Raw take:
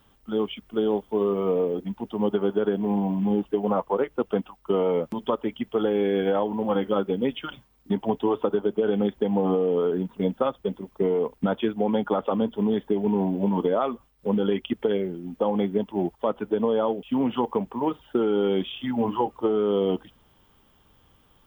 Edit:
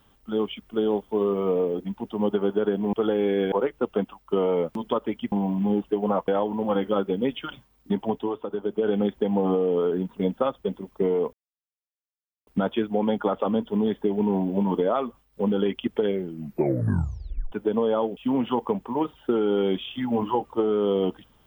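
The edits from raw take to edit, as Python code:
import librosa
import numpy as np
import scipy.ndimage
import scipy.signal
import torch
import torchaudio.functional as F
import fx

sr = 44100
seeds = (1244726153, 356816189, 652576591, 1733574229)

y = fx.edit(x, sr, fx.swap(start_s=2.93, length_s=0.96, other_s=5.69, other_length_s=0.59),
    fx.fade_down_up(start_s=8.0, length_s=0.88, db=-9.0, fade_s=0.44),
    fx.insert_silence(at_s=11.33, length_s=1.14),
    fx.tape_stop(start_s=15.13, length_s=1.25), tone=tone)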